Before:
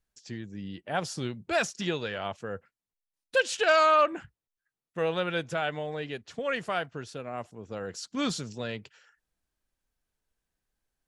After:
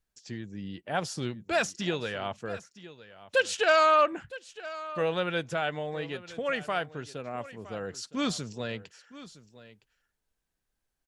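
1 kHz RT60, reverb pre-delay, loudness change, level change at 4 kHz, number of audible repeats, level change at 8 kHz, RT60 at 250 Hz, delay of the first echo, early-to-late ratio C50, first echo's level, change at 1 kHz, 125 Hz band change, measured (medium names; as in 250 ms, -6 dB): no reverb, no reverb, -0.5 dB, 0.0 dB, 1, 0.0 dB, no reverb, 964 ms, no reverb, -17.0 dB, 0.0 dB, 0.0 dB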